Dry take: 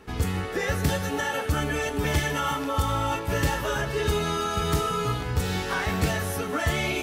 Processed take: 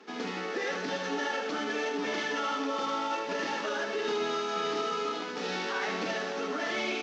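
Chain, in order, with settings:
variable-slope delta modulation 32 kbit/s
Butterworth high-pass 210 Hz 48 dB per octave
brickwall limiter −21.5 dBFS, peak gain reduction 6 dB
on a send: single-tap delay 77 ms −6.5 dB
on the sum: level −2.5 dB

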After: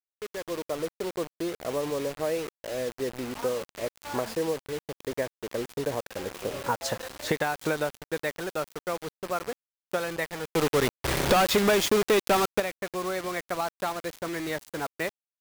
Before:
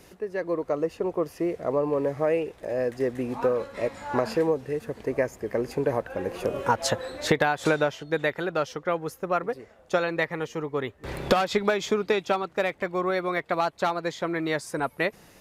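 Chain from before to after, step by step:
automatic gain control gain up to 3 dB
bit reduction 5 bits
0:10.50–0:12.60: power curve on the samples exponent 0.35
level −8 dB

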